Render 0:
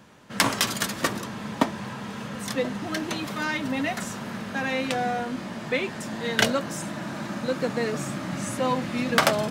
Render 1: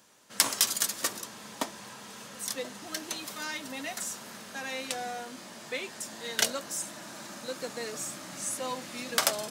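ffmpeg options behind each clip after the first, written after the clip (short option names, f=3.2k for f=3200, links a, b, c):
-af "bass=f=250:g=-11,treble=f=4k:g=14,volume=-9.5dB"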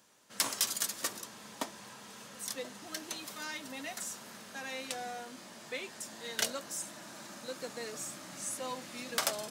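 -af "asoftclip=type=tanh:threshold=-12.5dB,volume=-4.5dB"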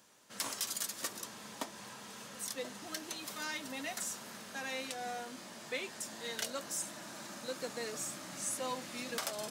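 -af "alimiter=level_in=2dB:limit=-24dB:level=0:latency=1:release=179,volume=-2dB,volume=1dB"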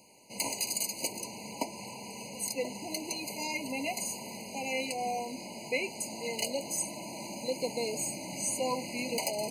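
-af "afftfilt=real='re*eq(mod(floor(b*sr/1024/1000),2),0)':imag='im*eq(mod(floor(b*sr/1024/1000),2),0)':win_size=1024:overlap=0.75,volume=8dB"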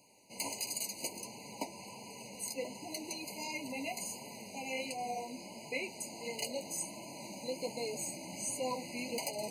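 -af "flanger=delay=6.9:depth=5.4:regen=-36:speed=1.4:shape=sinusoidal,volume=-1.5dB"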